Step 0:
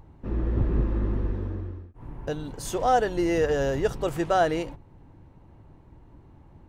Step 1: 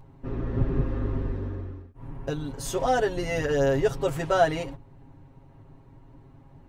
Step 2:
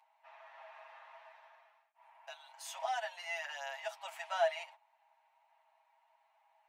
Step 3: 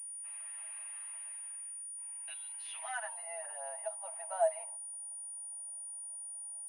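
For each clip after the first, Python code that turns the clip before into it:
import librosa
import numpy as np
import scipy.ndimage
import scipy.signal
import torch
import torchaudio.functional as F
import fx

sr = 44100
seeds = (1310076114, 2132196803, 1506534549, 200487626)

y1 = x + 0.96 * np.pad(x, (int(7.4 * sr / 1000.0), 0))[:len(x)]
y1 = y1 * 10.0 ** (-2.0 / 20.0)
y2 = scipy.signal.sosfilt(scipy.signal.cheby1(6, 9, 620.0, 'highpass', fs=sr, output='sos'), y1)
y2 = y2 * 10.0 ** (-3.5 / 20.0)
y3 = fx.filter_sweep_bandpass(y2, sr, from_hz=2700.0, to_hz=540.0, start_s=2.77, end_s=3.29, q=2.0)
y3 = fx.pwm(y3, sr, carrier_hz=9500.0)
y3 = y3 * 10.0 ** (4.0 / 20.0)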